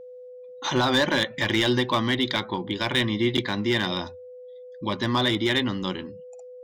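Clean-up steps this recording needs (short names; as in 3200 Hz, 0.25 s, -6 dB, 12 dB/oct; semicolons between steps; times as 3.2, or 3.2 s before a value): clip repair -14.5 dBFS; notch 500 Hz, Q 30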